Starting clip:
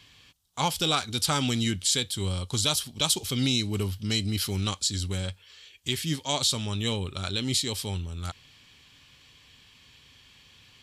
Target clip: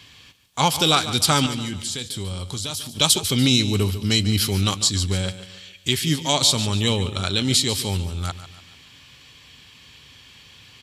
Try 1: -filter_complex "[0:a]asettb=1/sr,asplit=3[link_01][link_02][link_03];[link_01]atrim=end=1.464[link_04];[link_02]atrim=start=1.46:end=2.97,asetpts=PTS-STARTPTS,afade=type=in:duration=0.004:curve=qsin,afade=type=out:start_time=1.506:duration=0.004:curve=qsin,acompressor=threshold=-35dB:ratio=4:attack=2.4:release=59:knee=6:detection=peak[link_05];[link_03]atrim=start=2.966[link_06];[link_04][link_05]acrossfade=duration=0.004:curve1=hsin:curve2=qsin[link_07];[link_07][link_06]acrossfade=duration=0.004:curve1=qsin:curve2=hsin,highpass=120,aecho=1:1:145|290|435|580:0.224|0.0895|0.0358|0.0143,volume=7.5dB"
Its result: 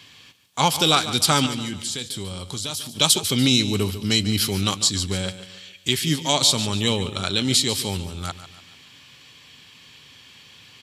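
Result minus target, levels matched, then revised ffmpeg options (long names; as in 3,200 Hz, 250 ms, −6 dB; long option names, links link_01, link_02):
125 Hz band −3.0 dB
-filter_complex "[0:a]asettb=1/sr,asplit=3[link_01][link_02][link_03];[link_01]atrim=end=1.464[link_04];[link_02]atrim=start=1.46:end=2.97,asetpts=PTS-STARTPTS,afade=type=in:duration=0.004:curve=qsin,afade=type=out:start_time=1.506:duration=0.004:curve=qsin,acompressor=threshold=-35dB:ratio=4:attack=2.4:release=59:knee=6:detection=peak[link_05];[link_03]atrim=start=2.966[link_06];[link_04][link_05]acrossfade=duration=0.004:curve1=hsin:curve2=qsin[link_07];[link_07][link_06]acrossfade=duration=0.004:curve1=qsin:curve2=hsin,highpass=48,aecho=1:1:145|290|435|580:0.224|0.0895|0.0358|0.0143,volume=7.5dB"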